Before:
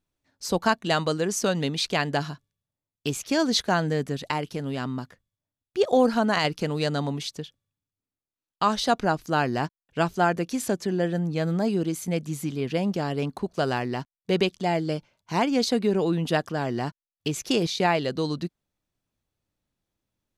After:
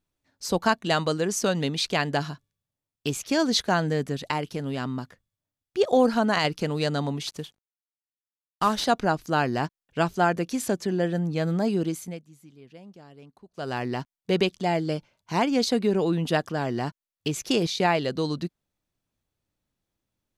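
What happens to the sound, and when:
7.27–8.85 CVSD 64 kbps
11.87–13.87 dip -21 dB, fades 0.36 s linear

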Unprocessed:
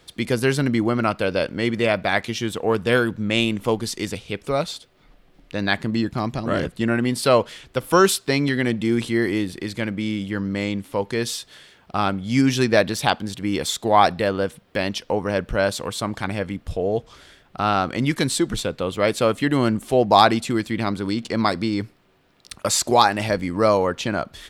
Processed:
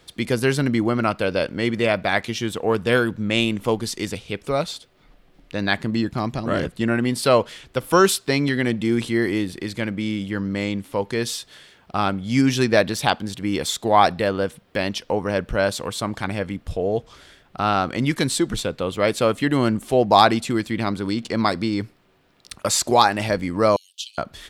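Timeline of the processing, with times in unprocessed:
23.76–24.18 steep high-pass 2900 Hz 72 dB/oct

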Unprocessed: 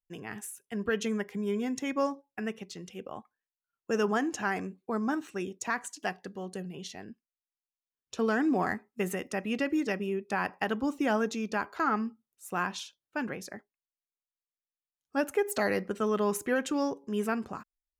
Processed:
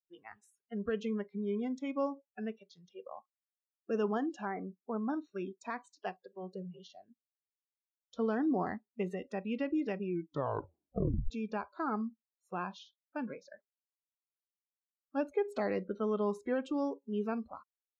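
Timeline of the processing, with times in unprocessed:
4.45–5.1 elliptic low-pass 2200 Hz
10.02 tape stop 1.28 s
whole clip: dynamic EQ 1600 Hz, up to -7 dB, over -47 dBFS, Q 1.6; Bessel low-pass 2200 Hz, order 2; spectral noise reduction 24 dB; gain -3.5 dB

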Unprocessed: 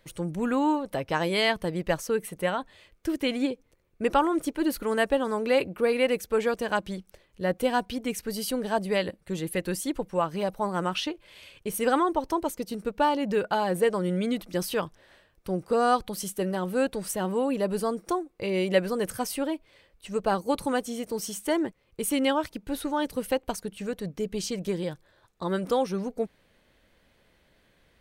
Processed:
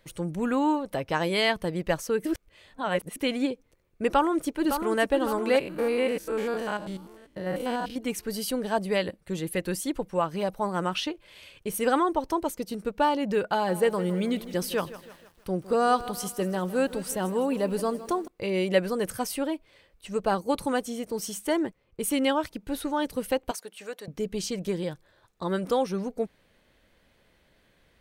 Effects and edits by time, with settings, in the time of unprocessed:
2.25–3.16 reverse
4.08–5 echo throw 0.56 s, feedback 55%, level -7.5 dB
5.59–7.96 stepped spectrum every 0.1 s
13.51–18.28 lo-fi delay 0.159 s, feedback 55%, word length 8-bit, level -15 dB
20.35–22.6 mismatched tape noise reduction decoder only
23.51–24.08 HPF 540 Hz

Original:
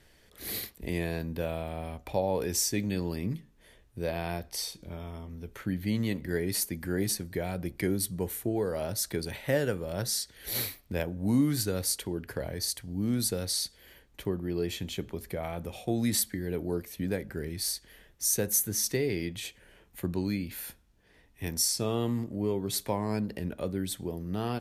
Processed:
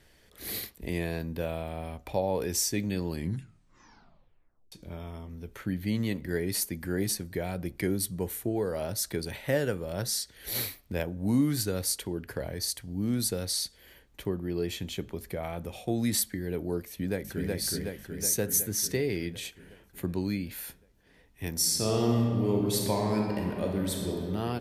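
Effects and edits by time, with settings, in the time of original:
3.08 tape stop 1.64 s
16.87–17.51 echo throw 0.37 s, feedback 65%, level -1.5 dB
21.51–24.23 reverb throw, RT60 2.5 s, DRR -0.5 dB

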